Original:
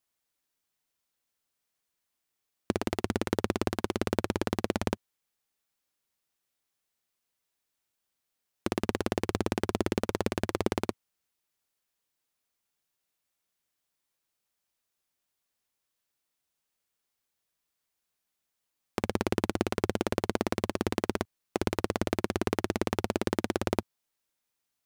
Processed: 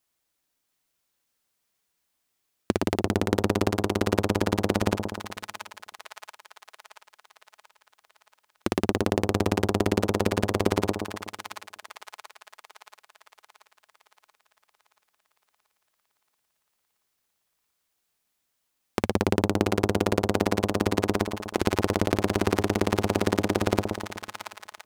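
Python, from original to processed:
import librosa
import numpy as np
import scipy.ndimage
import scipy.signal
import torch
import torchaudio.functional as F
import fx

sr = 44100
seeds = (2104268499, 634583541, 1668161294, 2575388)

y = fx.echo_split(x, sr, split_hz=850.0, low_ms=124, high_ms=681, feedback_pct=52, wet_db=-6)
y = F.gain(torch.from_numpy(y), 4.5).numpy()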